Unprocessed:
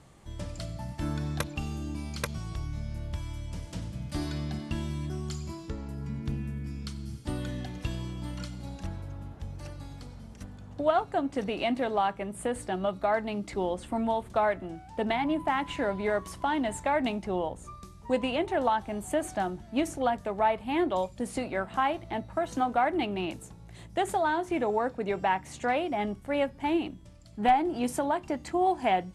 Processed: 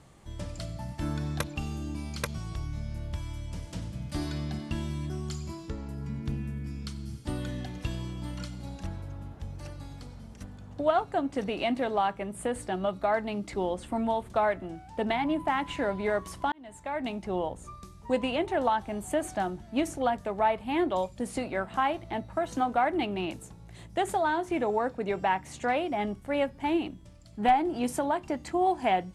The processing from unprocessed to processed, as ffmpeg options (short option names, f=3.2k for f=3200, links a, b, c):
-filter_complex "[0:a]asplit=2[a][b];[a]atrim=end=16.52,asetpts=PTS-STARTPTS,afade=t=out:st=16.516:d=0.004:c=hsin[c];[b]atrim=start=16.52,asetpts=PTS-STARTPTS,afade=t=in:d=0.87[d];[c][d]concat=n=2:v=0:a=1"